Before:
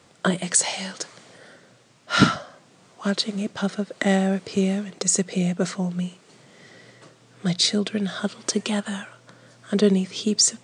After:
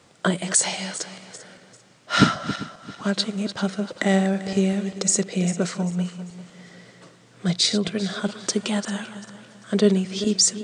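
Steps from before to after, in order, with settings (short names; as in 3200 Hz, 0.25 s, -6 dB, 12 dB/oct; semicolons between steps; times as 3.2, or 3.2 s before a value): regenerating reverse delay 0.197 s, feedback 53%, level -12 dB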